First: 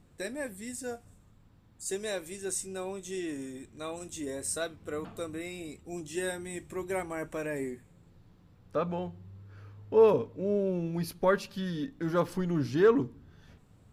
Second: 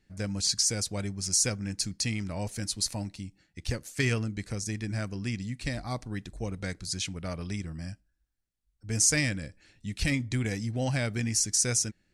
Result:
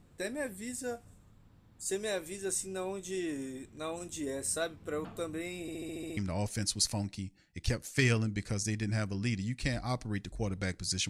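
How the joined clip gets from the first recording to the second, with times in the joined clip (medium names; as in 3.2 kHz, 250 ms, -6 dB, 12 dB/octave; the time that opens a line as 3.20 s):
first
5.61 s: stutter in place 0.07 s, 8 plays
6.17 s: go over to second from 2.18 s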